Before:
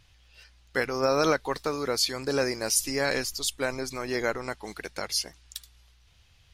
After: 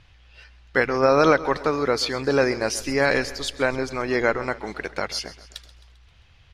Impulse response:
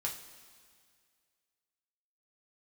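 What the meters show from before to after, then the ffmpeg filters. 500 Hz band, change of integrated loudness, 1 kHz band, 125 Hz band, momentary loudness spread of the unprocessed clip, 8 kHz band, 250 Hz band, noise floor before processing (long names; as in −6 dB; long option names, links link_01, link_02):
+7.0 dB, +5.5 dB, +7.5 dB, +7.0 dB, 13 LU, −4.5 dB, +7.0 dB, −60 dBFS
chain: -af "lowpass=2100,aemphasis=mode=production:type=75fm,aecho=1:1:132|264|396|528|660:0.133|0.0747|0.0418|0.0234|0.0131,volume=7.5dB"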